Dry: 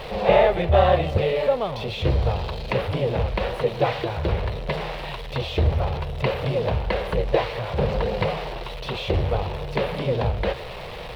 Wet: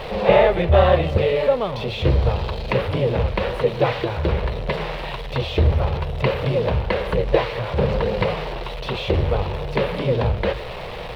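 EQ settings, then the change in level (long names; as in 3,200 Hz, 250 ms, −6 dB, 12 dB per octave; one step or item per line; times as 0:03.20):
high-shelf EQ 4,100 Hz −5 dB
mains-hum notches 50/100/150 Hz
dynamic equaliser 730 Hz, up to −5 dB, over −38 dBFS, Q 3.6
+4.0 dB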